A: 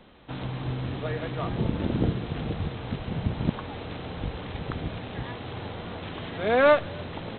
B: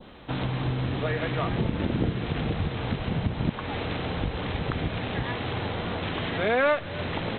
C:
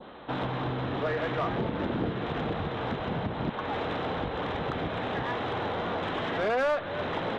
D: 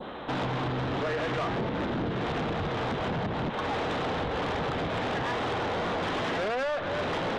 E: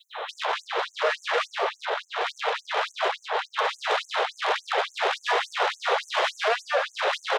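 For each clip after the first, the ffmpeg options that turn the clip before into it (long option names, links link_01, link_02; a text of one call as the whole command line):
ffmpeg -i in.wav -af "adynamicequalizer=threshold=0.00631:dfrequency=2100:dqfactor=1.1:tfrequency=2100:tqfactor=1.1:attack=5:release=100:ratio=0.375:range=2.5:mode=boostabove:tftype=bell,acompressor=threshold=-32dB:ratio=2.5,volume=6.5dB" out.wav
ffmpeg -i in.wav -filter_complex "[0:a]equalizer=frequency=2400:width_type=o:width=0.88:gain=-6.5,asplit=2[link_01][link_02];[link_02]highpass=frequency=720:poles=1,volume=20dB,asoftclip=type=tanh:threshold=-12.5dB[link_03];[link_01][link_03]amix=inputs=2:normalize=0,lowpass=frequency=1600:poles=1,volume=-6dB,volume=-6dB" out.wav
ffmpeg -i in.wav -af "acompressor=threshold=-29dB:ratio=6,asoftclip=type=tanh:threshold=-34dB,volume=7.5dB" out.wav
ffmpeg -i in.wav -filter_complex "[0:a]asplit=2[link_01][link_02];[link_02]aecho=0:1:199:0.447[link_03];[link_01][link_03]amix=inputs=2:normalize=0,afftfilt=real='re*gte(b*sr/1024,370*pow(6200/370,0.5+0.5*sin(2*PI*3.5*pts/sr)))':imag='im*gte(b*sr/1024,370*pow(6200/370,0.5+0.5*sin(2*PI*3.5*pts/sr)))':win_size=1024:overlap=0.75,volume=8.5dB" out.wav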